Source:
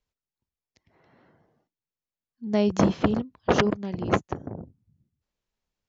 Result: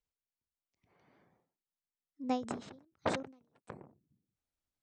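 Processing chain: speed glide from 100% -> 144%; ending taper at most 130 dB/s; gain -8.5 dB

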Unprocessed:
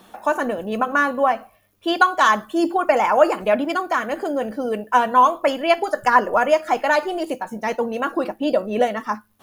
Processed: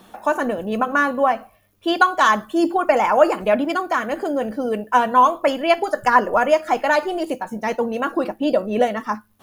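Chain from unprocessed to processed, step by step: low shelf 250 Hz +4 dB

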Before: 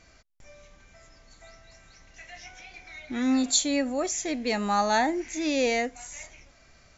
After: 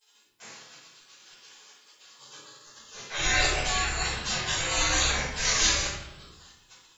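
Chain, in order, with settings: spectral gate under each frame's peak -30 dB weak; shoebox room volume 230 m³, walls mixed, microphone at 5 m; gain +7 dB

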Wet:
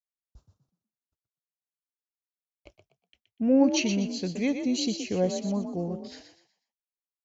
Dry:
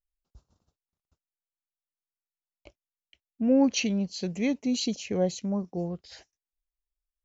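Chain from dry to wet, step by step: expander -59 dBFS; frequency-shifting echo 0.122 s, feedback 33%, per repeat +41 Hz, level -8 dB

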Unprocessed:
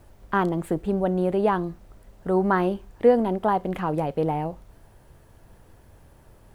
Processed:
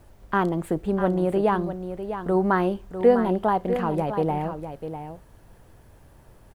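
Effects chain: echo 0.65 s -9.5 dB

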